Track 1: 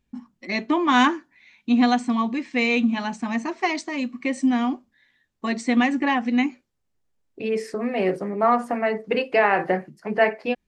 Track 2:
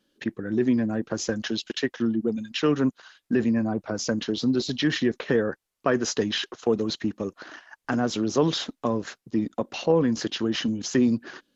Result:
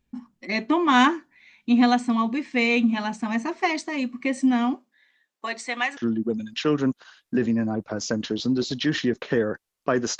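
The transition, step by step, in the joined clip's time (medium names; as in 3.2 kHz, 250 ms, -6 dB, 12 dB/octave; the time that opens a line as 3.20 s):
track 1
4.74–5.97 s: high-pass 270 Hz -> 950 Hz
5.97 s: go over to track 2 from 1.95 s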